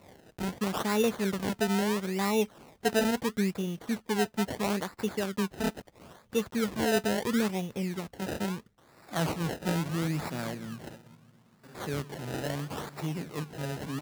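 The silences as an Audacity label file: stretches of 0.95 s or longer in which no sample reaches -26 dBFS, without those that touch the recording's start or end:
10.510000	11.890000	silence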